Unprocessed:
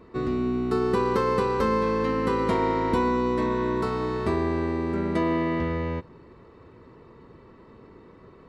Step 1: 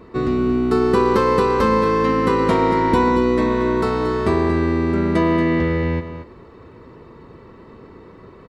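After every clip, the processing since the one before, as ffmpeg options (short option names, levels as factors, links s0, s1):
-af "aecho=1:1:230:0.299,volume=2.24"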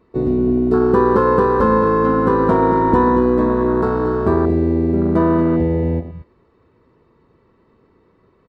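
-af "afwtdn=0.1,volume=1.33"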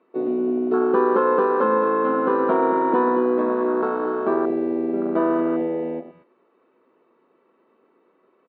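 -af "highpass=f=290:w=0.5412,highpass=f=290:w=1.3066,equalizer=f=310:t=q:w=4:g=-4,equalizer=f=440:t=q:w=4:g=-5,equalizer=f=980:t=q:w=4:g=-5,equalizer=f=1900:t=q:w=4:g=-7,lowpass=f=3000:w=0.5412,lowpass=f=3000:w=1.3066"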